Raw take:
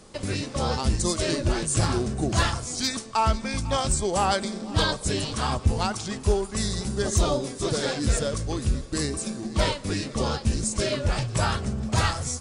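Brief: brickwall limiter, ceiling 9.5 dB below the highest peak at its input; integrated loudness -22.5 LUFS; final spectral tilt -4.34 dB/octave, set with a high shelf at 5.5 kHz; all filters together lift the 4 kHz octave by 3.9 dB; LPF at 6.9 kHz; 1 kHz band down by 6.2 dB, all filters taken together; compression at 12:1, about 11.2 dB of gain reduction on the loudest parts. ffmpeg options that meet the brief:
-af "lowpass=6900,equalizer=f=1000:t=o:g=-8.5,equalizer=f=4000:t=o:g=8,highshelf=f=5500:g=-5.5,acompressor=threshold=0.0398:ratio=12,volume=4.47,alimiter=limit=0.237:level=0:latency=1"

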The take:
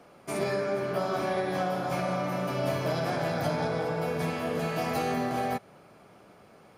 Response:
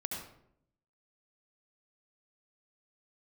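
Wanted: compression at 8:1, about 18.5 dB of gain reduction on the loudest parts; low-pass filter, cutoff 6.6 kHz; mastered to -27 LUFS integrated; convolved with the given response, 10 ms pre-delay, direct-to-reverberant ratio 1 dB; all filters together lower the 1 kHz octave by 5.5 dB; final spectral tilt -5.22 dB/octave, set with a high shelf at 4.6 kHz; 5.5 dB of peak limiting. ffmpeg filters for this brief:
-filter_complex "[0:a]lowpass=6600,equalizer=f=1000:t=o:g=-8.5,highshelf=f=4600:g=4.5,acompressor=threshold=0.00447:ratio=8,alimiter=level_in=7.5:limit=0.0631:level=0:latency=1,volume=0.133,asplit=2[s0][s1];[1:a]atrim=start_sample=2205,adelay=10[s2];[s1][s2]afir=irnorm=-1:irlink=0,volume=0.75[s3];[s0][s3]amix=inputs=2:normalize=0,volume=11.9"

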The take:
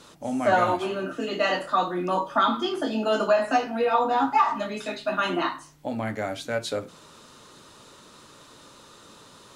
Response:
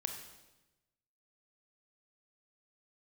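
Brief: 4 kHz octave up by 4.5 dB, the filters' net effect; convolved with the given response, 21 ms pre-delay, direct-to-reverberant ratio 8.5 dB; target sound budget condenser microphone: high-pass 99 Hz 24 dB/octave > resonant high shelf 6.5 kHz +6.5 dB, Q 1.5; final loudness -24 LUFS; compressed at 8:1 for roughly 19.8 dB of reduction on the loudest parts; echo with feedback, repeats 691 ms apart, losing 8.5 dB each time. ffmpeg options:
-filter_complex "[0:a]equalizer=f=4000:t=o:g=7.5,acompressor=threshold=0.0141:ratio=8,aecho=1:1:691|1382|2073|2764:0.376|0.143|0.0543|0.0206,asplit=2[s0][s1];[1:a]atrim=start_sample=2205,adelay=21[s2];[s1][s2]afir=irnorm=-1:irlink=0,volume=0.355[s3];[s0][s3]amix=inputs=2:normalize=0,highpass=f=99:w=0.5412,highpass=f=99:w=1.3066,highshelf=f=6500:t=q:w=1.5:g=6.5,volume=6.31"

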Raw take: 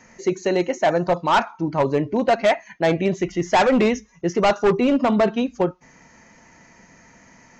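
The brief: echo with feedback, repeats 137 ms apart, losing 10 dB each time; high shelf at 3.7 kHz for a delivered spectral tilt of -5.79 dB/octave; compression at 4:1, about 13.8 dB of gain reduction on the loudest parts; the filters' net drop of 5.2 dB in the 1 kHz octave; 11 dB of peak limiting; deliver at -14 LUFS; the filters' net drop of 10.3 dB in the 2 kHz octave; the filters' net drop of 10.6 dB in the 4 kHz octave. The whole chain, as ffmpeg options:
-af "equalizer=f=1000:t=o:g=-5,equalizer=f=2000:t=o:g=-8.5,highshelf=f=3700:g=-7,equalizer=f=4000:t=o:g=-6,acompressor=threshold=0.0224:ratio=4,alimiter=level_in=2.66:limit=0.0631:level=0:latency=1,volume=0.376,aecho=1:1:137|274|411|548:0.316|0.101|0.0324|0.0104,volume=21.1"

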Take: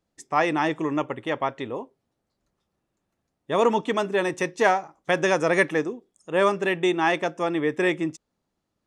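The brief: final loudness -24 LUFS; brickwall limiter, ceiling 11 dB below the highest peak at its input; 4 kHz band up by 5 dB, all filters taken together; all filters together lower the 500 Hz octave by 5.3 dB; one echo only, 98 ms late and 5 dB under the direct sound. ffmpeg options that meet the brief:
-af "equalizer=f=500:t=o:g=-7,equalizer=f=4000:t=o:g=6.5,alimiter=limit=0.126:level=0:latency=1,aecho=1:1:98:0.562,volume=1.68"

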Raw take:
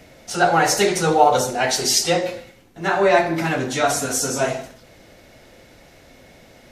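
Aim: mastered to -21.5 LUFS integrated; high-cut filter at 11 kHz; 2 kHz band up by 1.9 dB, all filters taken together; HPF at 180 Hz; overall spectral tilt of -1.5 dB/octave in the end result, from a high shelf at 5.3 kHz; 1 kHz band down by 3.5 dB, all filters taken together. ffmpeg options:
-af "highpass=180,lowpass=11000,equalizer=f=1000:t=o:g=-6.5,equalizer=f=2000:t=o:g=4,highshelf=f=5300:g=7,volume=0.708"

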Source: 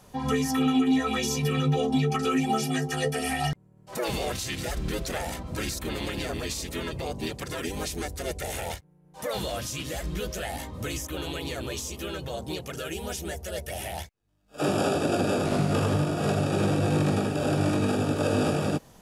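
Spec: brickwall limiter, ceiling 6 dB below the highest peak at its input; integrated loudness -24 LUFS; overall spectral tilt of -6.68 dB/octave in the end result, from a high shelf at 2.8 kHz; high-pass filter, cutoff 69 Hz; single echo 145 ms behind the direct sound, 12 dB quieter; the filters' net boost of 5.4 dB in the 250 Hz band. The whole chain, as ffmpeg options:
-af "highpass=69,equalizer=f=250:t=o:g=6.5,highshelf=f=2800:g=-9,alimiter=limit=0.168:level=0:latency=1,aecho=1:1:145:0.251,volume=1.41"

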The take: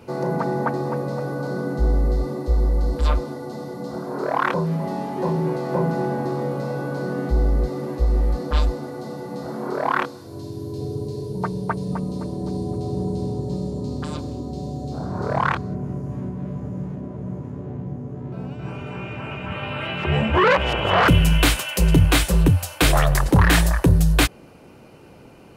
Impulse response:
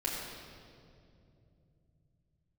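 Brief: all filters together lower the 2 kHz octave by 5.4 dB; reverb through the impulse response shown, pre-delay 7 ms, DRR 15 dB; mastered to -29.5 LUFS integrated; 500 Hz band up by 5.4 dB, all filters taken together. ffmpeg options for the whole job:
-filter_complex "[0:a]equalizer=f=500:t=o:g=7,equalizer=f=2000:t=o:g=-8,asplit=2[s0][s1];[1:a]atrim=start_sample=2205,adelay=7[s2];[s1][s2]afir=irnorm=-1:irlink=0,volume=0.1[s3];[s0][s3]amix=inputs=2:normalize=0,volume=0.398"

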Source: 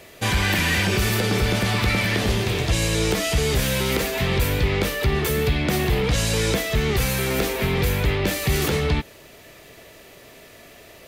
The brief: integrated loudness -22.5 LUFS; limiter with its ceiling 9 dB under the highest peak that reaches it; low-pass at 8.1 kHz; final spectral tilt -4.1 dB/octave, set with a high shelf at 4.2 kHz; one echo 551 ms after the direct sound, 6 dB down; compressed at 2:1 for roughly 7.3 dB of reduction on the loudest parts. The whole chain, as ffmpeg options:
-af "lowpass=8100,highshelf=f=4200:g=3.5,acompressor=threshold=0.0316:ratio=2,alimiter=level_in=1.12:limit=0.0631:level=0:latency=1,volume=0.891,aecho=1:1:551:0.501,volume=3.16"

